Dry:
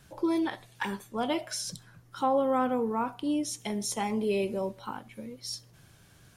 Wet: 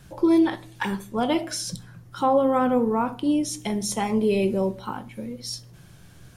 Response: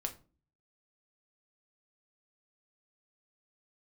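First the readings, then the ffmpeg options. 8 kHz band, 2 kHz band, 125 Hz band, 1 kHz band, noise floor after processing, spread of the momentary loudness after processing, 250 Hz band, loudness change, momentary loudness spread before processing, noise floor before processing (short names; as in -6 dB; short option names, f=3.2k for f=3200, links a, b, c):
+4.5 dB, +4.5 dB, +9.5 dB, +5.0 dB, -49 dBFS, 15 LU, +8.0 dB, +7.0 dB, 14 LU, -58 dBFS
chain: -filter_complex "[0:a]asplit=2[a][b];[1:a]atrim=start_sample=2205,lowshelf=f=480:g=10[c];[b][c]afir=irnorm=-1:irlink=0,volume=-3dB[d];[a][d]amix=inputs=2:normalize=0"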